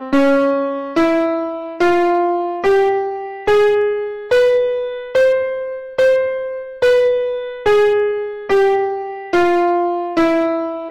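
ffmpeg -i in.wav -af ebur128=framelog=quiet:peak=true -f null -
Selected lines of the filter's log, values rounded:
Integrated loudness:
  I:         -16.3 LUFS
  Threshold: -26.3 LUFS
Loudness range:
  LRA:         1.0 LU
  Threshold: -36.3 LUFS
  LRA low:   -16.8 LUFS
  LRA high:  -15.8 LUFS
True peak:
  Peak:       -9.4 dBFS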